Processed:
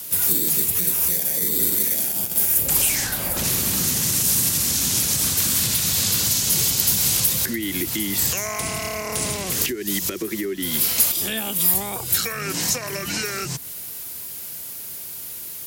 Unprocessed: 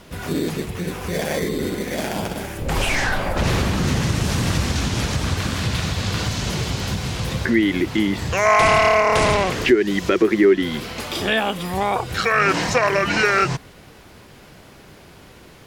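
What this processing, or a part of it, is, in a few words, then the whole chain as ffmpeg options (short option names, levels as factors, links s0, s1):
FM broadcast chain: -filter_complex "[0:a]highpass=54,dynaudnorm=f=230:g=31:m=3.76,acrossover=split=140|350[s0][s1][s2];[s0]acompressor=threshold=0.0355:ratio=4[s3];[s1]acompressor=threshold=0.0891:ratio=4[s4];[s2]acompressor=threshold=0.0398:ratio=4[s5];[s3][s4][s5]amix=inputs=3:normalize=0,aemphasis=mode=production:type=75fm,alimiter=limit=0.237:level=0:latency=1:release=233,asoftclip=type=hard:threshold=0.211,lowpass=f=15000:w=0.5412,lowpass=f=15000:w=1.3066,aemphasis=mode=production:type=75fm,volume=0.596"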